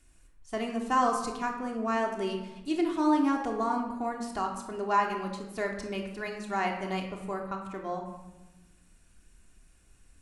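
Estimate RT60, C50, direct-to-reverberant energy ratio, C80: 1.1 s, 5.5 dB, 0.5 dB, 8.0 dB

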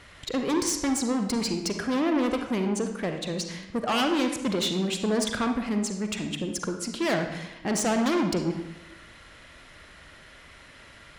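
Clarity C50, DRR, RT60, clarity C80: 6.0 dB, 5.0 dB, 0.95 s, 9.0 dB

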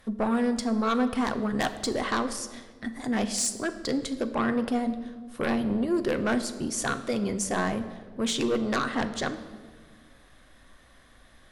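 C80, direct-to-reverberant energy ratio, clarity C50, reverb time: 13.5 dB, 8.5 dB, 12.0 dB, 1.6 s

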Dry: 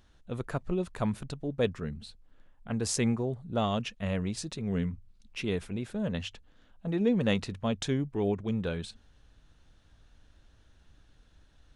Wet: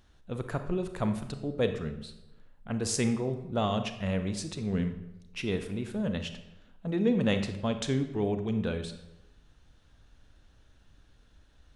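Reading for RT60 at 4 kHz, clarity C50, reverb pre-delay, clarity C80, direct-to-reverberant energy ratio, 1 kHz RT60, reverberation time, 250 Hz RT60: 0.65 s, 9.5 dB, 30 ms, 12.0 dB, 8.0 dB, 0.90 s, 0.95 s, 1.0 s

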